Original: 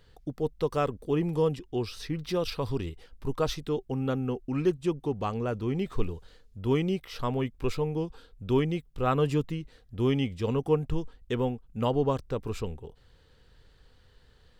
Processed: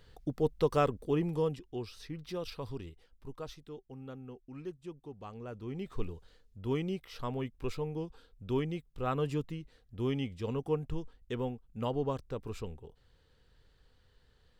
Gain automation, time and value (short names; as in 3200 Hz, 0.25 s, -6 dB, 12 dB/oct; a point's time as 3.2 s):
0.78 s 0 dB
1.9 s -9.5 dB
2.64 s -9.5 dB
3.64 s -16.5 dB
5.15 s -16.5 dB
6.03 s -7 dB